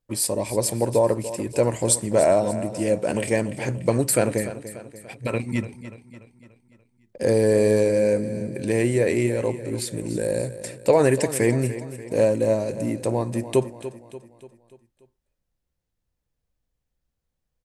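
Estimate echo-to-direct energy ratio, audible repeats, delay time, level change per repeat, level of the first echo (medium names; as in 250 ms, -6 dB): -12.5 dB, 4, 291 ms, -6.0 dB, -13.5 dB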